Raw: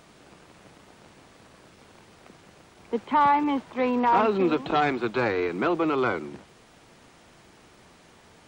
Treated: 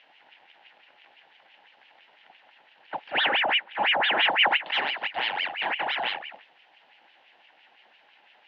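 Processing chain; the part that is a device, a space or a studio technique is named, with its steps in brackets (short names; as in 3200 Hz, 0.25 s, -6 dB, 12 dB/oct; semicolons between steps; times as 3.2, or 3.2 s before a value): 3.25–4.64 tilt -3 dB/oct; voice changer toy (ring modulator with a swept carrier 1500 Hz, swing 80%, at 5.9 Hz; speaker cabinet 410–3700 Hz, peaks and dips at 420 Hz -5 dB, 820 Hz +9 dB, 1200 Hz -9 dB, 1800 Hz +4 dB, 2900 Hz +7 dB); gain -3 dB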